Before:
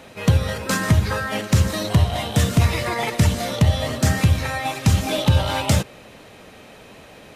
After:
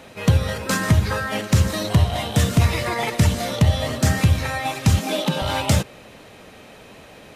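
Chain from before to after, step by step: 4.99–5.42 elliptic high-pass 160 Hz

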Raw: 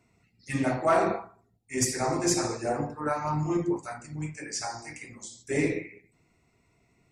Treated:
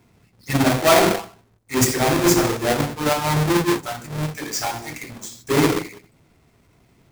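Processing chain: half-waves squared off; notch 2900 Hz, Q 28; gain +5 dB

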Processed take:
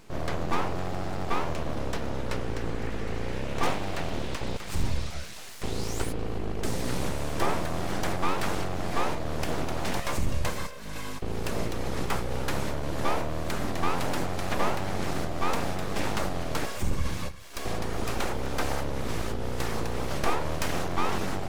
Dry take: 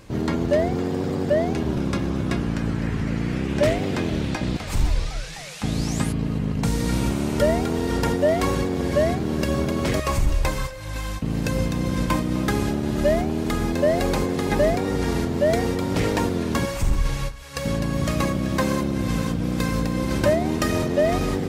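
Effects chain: full-wave rectifier; gain -4 dB

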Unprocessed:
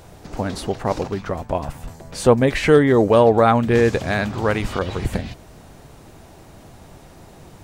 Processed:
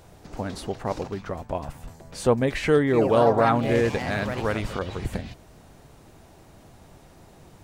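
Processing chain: 2.85–5.03 echoes that change speed 82 ms, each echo +3 st, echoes 3, each echo -6 dB; gain -6.5 dB

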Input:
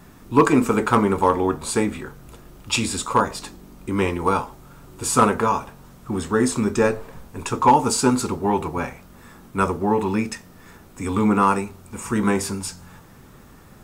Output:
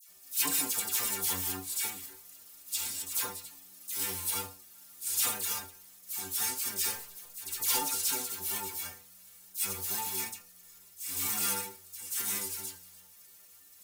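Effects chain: spectral whitening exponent 0.3; pre-emphasis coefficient 0.8; metallic resonator 90 Hz, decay 0.29 s, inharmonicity 0.008; dispersion lows, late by 84 ms, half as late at 1700 Hz

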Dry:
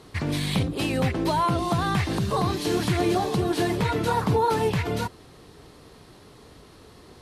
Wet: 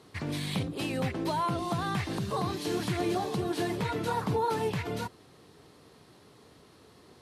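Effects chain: HPF 96 Hz; gain -6.5 dB

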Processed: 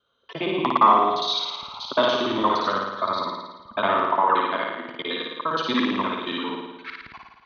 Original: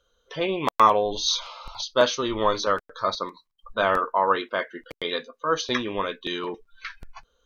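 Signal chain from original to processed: local time reversal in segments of 58 ms; speaker cabinet 130–4100 Hz, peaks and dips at 250 Hz +5 dB, 500 Hz -9 dB, 1000 Hz +3 dB, 1600 Hz -3 dB; flutter echo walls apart 9.5 m, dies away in 1.1 s

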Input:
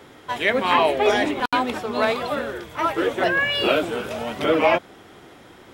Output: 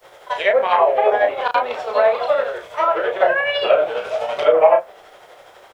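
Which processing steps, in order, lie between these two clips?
grains 0.129 s, grains 12/s, spray 25 ms, pitch spread up and down by 0 st; treble ducked by the level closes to 1100 Hz, closed at -16 dBFS; added noise pink -63 dBFS; resonant low shelf 390 Hz -12.5 dB, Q 3; doubler 33 ms -6 dB; on a send: reverb RT60 0.35 s, pre-delay 3 ms, DRR 19 dB; on the sum: gain +2.5 dB

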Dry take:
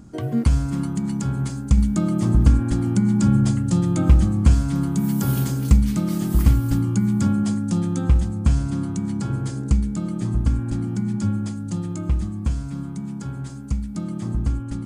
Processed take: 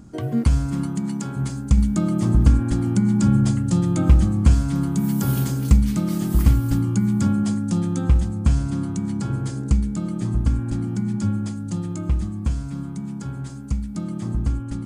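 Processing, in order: 0.86–1.35 HPF 91 Hz -> 230 Hz

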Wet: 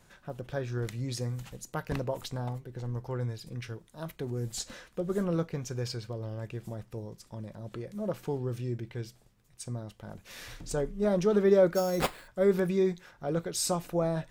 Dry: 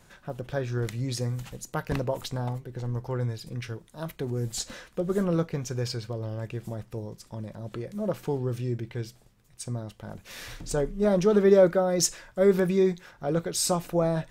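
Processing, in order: 11.74–12.28 sample-rate reducer 6000 Hz, jitter 0%; gain -4 dB

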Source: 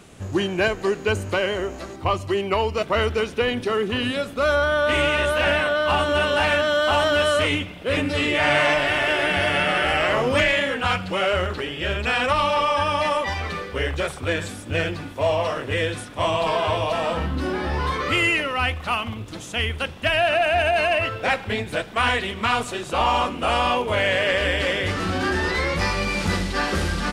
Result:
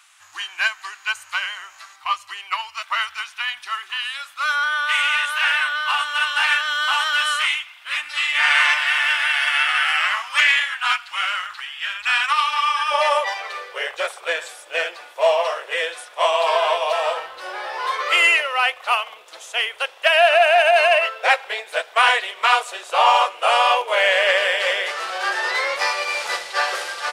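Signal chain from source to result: inverse Chebyshev high-pass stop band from 520 Hz, stop band 40 dB, from 12.9 s stop band from 270 Hz; upward expander 1.5:1, over -32 dBFS; gain +7 dB

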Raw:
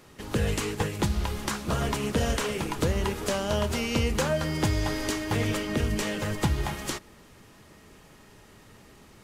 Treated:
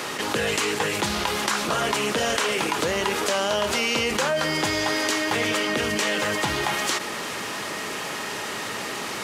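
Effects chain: weighting filter A; fast leveller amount 70%; gain +3.5 dB

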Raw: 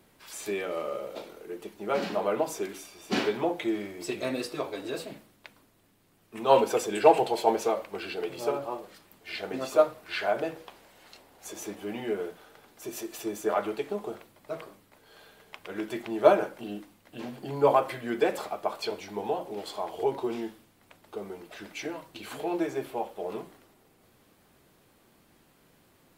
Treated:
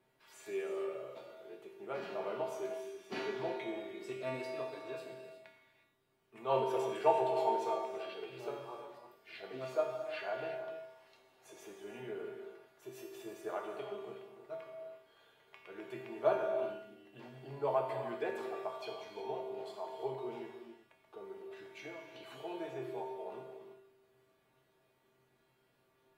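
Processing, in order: tone controls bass -6 dB, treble -9 dB; resonator 130 Hz, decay 0.6 s, harmonics odd, mix 90%; non-linear reverb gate 0.39 s flat, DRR 4.5 dB; gain +4.5 dB

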